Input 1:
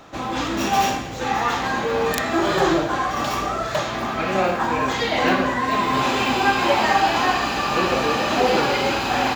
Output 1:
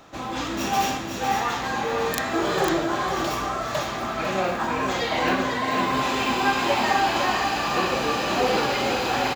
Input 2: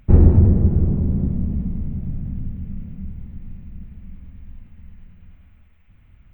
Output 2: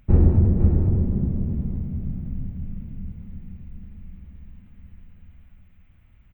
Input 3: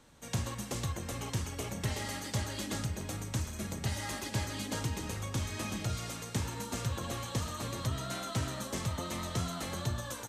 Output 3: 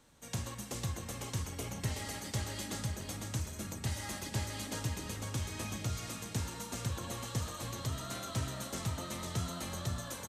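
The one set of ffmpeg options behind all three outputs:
-filter_complex "[0:a]highshelf=frequency=5500:gain=4,asplit=2[link_01][link_02];[link_02]aecho=0:1:502:0.501[link_03];[link_01][link_03]amix=inputs=2:normalize=0,volume=-4.5dB"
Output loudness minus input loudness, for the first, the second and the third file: −3.0, −3.5, −2.5 LU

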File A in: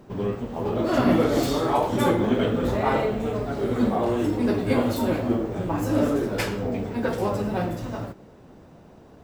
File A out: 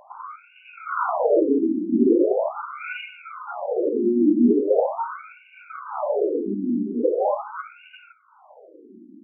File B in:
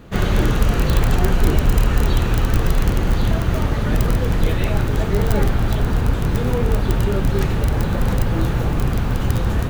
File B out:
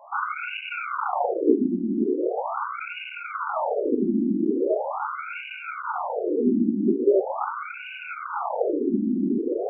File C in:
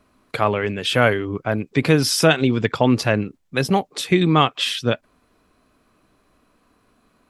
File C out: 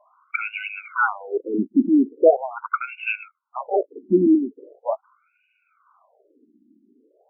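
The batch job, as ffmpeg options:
-af "aeval=exprs='0.891*(cos(1*acos(clip(val(0)/0.891,-1,1)))-cos(1*PI/2))+0.0447*(cos(4*acos(clip(val(0)/0.891,-1,1)))-cos(4*PI/2))+0.282*(cos(5*acos(clip(val(0)/0.891,-1,1)))-cos(5*PI/2))+0.0447*(cos(8*acos(clip(val(0)/0.891,-1,1)))-cos(8*PI/2))':channel_layout=same,asuperstop=centerf=1800:order=8:qfactor=2.4,afftfilt=real='re*between(b*sr/1024,250*pow(2100/250,0.5+0.5*sin(2*PI*0.41*pts/sr))/1.41,250*pow(2100/250,0.5+0.5*sin(2*PI*0.41*pts/sr))*1.41)':imag='im*between(b*sr/1024,250*pow(2100/250,0.5+0.5*sin(2*PI*0.41*pts/sr))/1.41,250*pow(2100/250,0.5+0.5*sin(2*PI*0.41*pts/sr))*1.41)':win_size=1024:overlap=0.75"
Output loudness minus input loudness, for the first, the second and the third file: +2.0, −6.0, −3.0 LU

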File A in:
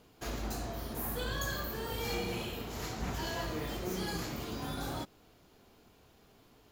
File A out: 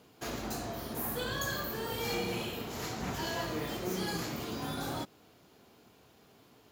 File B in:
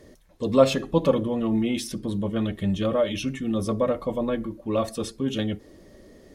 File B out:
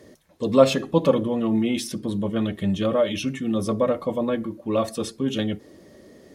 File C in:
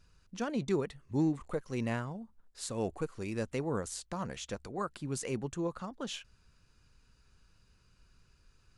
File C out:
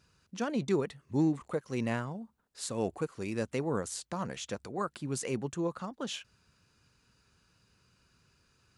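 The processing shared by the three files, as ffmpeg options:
-af "highpass=100,volume=2dB"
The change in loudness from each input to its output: +1.5, +2.0, +2.0 LU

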